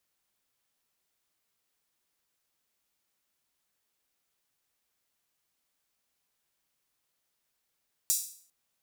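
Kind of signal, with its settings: open hi-hat length 0.40 s, high-pass 6.5 kHz, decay 0.51 s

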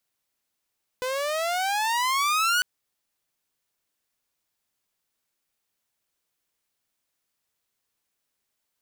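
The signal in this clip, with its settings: gliding synth tone saw, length 1.60 s, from 499 Hz, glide +19 st, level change +6.5 dB, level -17 dB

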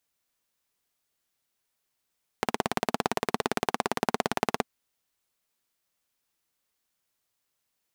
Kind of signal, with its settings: single-cylinder engine model, steady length 2.22 s, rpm 2100, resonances 240/420/710 Hz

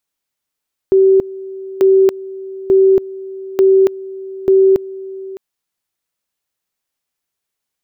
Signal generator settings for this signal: two-level tone 384 Hz -6 dBFS, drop 19 dB, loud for 0.28 s, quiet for 0.61 s, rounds 5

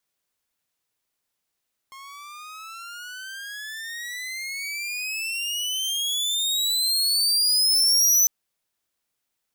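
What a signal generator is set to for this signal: gliding synth tone saw, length 6.35 s, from 1.07 kHz, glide +30 st, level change +26.5 dB, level -11 dB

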